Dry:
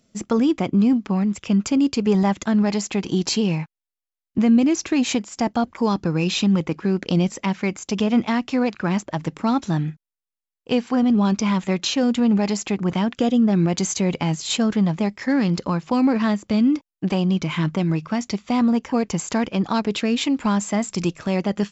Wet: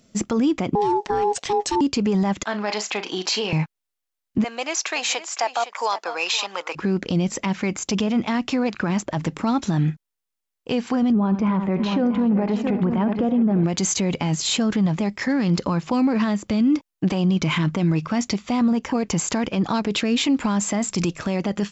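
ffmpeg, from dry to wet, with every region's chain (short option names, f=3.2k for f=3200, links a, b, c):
-filter_complex "[0:a]asettb=1/sr,asplit=3[a][b][c];[a]atrim=end=0.754[d];[b]atrim=start=0.75:end=1.81,asetpts=PTS-STARTPTS,afade=t=in:d=0.004:c=qsin,afade=t=out:st=1.056:d=0.004:c=qsin,equalizer=f=5.6k:t=o:w=1.1:g=7.5,bandreject=f=840:w=8.6,aeval=exprs='val(0)*sin(2*PI*620*n/s)':c=same[e];[c]atrim=start=1.806[f];[d][e]acrossfade=d=0.004:c1=hsin:c2=qsin[g];[g][f]acrossfade=d=0.004:c1=qsin:c2=hsin,asettb=1/sr,asplit=3[h][i][j];[h]atrim=end=2.434[k];[i]atrim=start=2.43:end=3.53,asetpts=PTS-STARTPTS,afade=t=in:d=0.004:c=qsin,afade=t=out:st=1.096:d=0.004:c=qsin,highpass=630,lowpass=5k,asplit=2[l][m];[m]adelay=38,volume=-12dB[n];[l][n]amix=inputs=2:normalize=0,atrim=end_sample=48510[o];[j]atrim=start=3.526[p];[k][o]acrossfade=d=0.004:c1=hsin:c2=qsin[q];[q][p]acrossfade=d=0.004:c1=qsin:c2=hsin,asettb=1/sr,asplit=3[r][s][t];[r]atrim=end=4.444[u];[s]atrim=start=4.44:end=6.75,asetpts=PTS-STARTPTS,afade=t=in:d=0.004:c=qsin,afade=t=out:st=2.306:d=0.004:c=qsin,highpass=f=620:w=0.5412,highpass=f=620:w=1.3066,aecho=1:1:512:0.2,atrim=end_sample=101871[v];[t]atrim=start=6.746[w];[u][v]acrossfade=d=0.004:c1=hsin:c2=qsin[x];[x][w]acrossfade=d=0.004:c1=qsin:c2=hsin,asettb=1/sr,asplit=3[y][z][aa];[y]atrim=end=11.124[ab];[z]atrim=start=11.12:end=13.64,asetpts=PTS-STARTPTS,afade=t=in:d=0.004:c=qsin,afade=t=out:st=2.516:d=0.004:c=qsin,lowpass=1.5k,aecho=1:1:77|351|673:0.178|0.126|0.299,atrim=end_sample=111132[ac];[aa]atrim=start=13.636[ad];[ab][ac]acrossfade=d=0.004:c1=hsin:c2=qsin[ae];[ae][ad]acrossfade=d=0.004:c1=qsin:c2=hsin,acompressor=threshold=-19dB:ratio=6,alimiter=limit=-19dB:level=0:latency=1:release=21,volume=6dB"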